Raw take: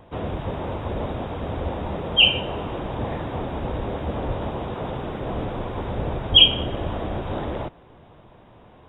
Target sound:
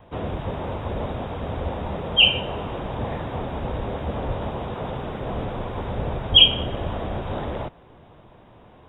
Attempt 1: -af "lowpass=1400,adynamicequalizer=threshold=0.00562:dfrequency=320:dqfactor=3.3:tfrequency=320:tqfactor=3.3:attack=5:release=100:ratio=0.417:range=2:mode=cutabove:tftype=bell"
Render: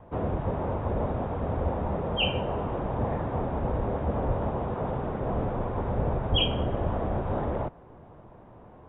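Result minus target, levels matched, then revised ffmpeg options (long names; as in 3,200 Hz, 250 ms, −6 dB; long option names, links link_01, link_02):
1,000 Hz band +5.5 dB
-af "adynamicequalizer=threshold=0.00562:dfrequency=320:dqfactor=3.3:tfrequency=320:tqfactor=3.3:attack=5:release=100:ratio=0.417:range=2:mode=cutabove:tftype=bell"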